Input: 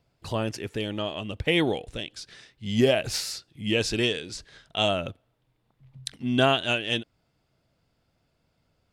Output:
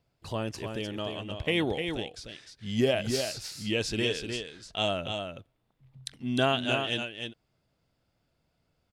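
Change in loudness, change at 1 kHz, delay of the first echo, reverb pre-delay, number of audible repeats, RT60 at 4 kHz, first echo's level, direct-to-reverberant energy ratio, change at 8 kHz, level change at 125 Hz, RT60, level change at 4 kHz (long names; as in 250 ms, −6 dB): −4.0 dB, −3.5 dB, 303 ms, no reverb audible, 1, no reverb audible, −6.0 dB, no reverb audible, −3.5 dB, −3.5 dB, no reverb audible, −3.5 dB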